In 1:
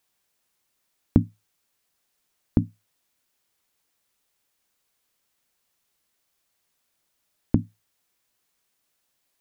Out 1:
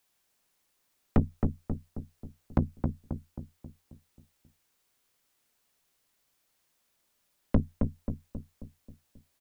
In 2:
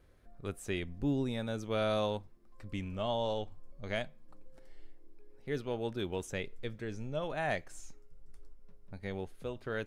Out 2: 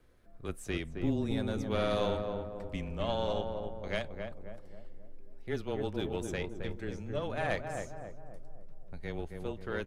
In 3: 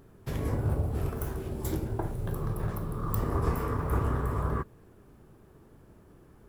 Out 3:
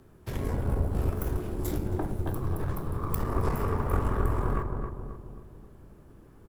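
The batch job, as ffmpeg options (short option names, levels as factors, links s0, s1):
-filter_complex "[0:a]afreqshift=-20,aeval=exprs='(tanh(10*val(0)+0.65)-tanh(0.65))/10':c=same,asplit=2[s0][s1];[s1]adelay=268,lowpass=f=1100:p=1,volume=0.631,asplit=2[s2][s3];[s3]adelay=268,lowpass=f=1100:p=1,volume=0.53,asplit=2[s4][s5];[s5]adelay=268,lowpass=f=1100:p=1,volume=0.53,asplit=2[s6][s7];[s7]adelay=268,lowpass=f=1100:p=1,volume=0.53,asplit=2[s8][s9];[s9]adelay=268,lowpass=f=1100:p=1,volume=0.53,asplit=2[s10][s11];[s11]adelay=268,lowpass=f=1100:p=1,volume=0.53,asplit=2[s12][s13];[s13]adelay=268,lowpass=f=1100:p=1,volume=0.53[s14];[s0][s2][s4][s6][s8][s10][s12][s14]amix=inputs=8:normalize=0,volume=1.5"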